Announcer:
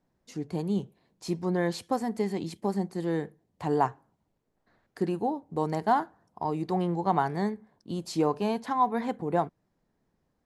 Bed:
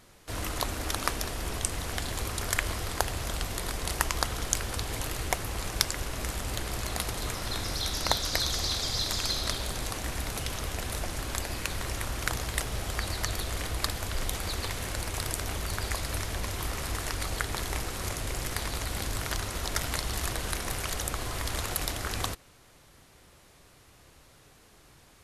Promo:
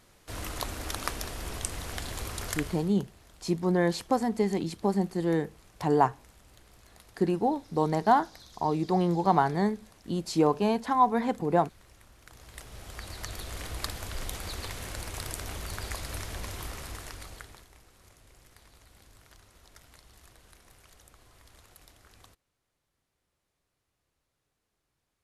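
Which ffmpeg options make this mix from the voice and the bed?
-filter_complex "[0:a]adelay=2200,volume=2.5dB[a];[1:a]volume=15.5dB,afade=t=out:st=2.44:d=0.5:silence=0.1,afade=t=in:st=12.27:d=1.49:silence=0.112202,afade=t=out:st=16.52:d=1.16:silence=0.1[b];[a][b]amix=inputs=2:normalize=0"

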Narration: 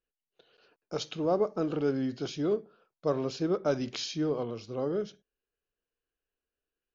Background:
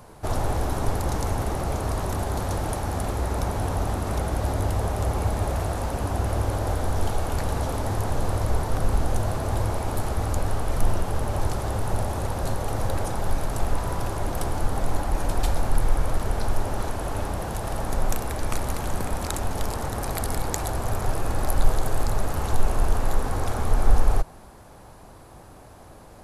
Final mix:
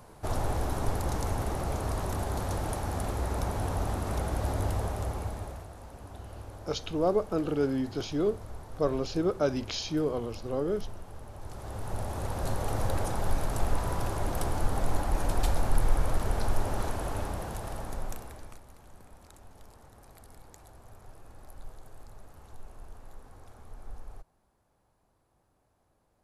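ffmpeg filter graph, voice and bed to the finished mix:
-filter_complex "[0:a]adelay=5750,volume=1dB[a];[1:a]volume=10.5dB,afade=t=out:st=4.69:d=0.98:silence=0.199526,afade=t=in:st=11.41:d=1.24:silence=0.16788,afade=t=out:st=16.89:d=1.72:silence=0.0794328[b];[a][b]amix=inputs=2:normalize=0"

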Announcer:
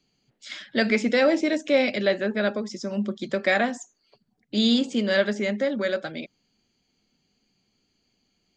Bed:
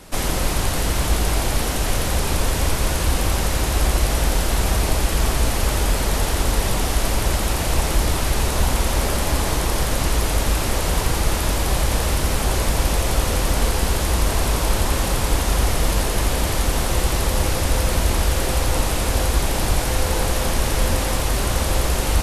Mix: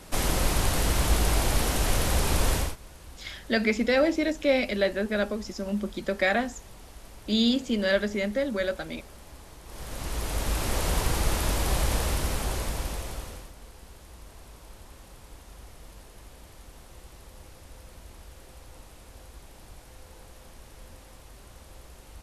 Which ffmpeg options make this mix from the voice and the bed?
-filter_complex "[0:a]adelay=2750,volume=-2.5dB[a];[1:a]volume=17dB,afade=t=out:st=2.54:d=0.22:silence=0.0707946,afade=t=in:st=9.64:d=1.18:silence=0.0891251,afade=t=out:st=11.89:d=1.63:silence=0.0749894[b];[a][b]amix=inputs=2:normalize=0"

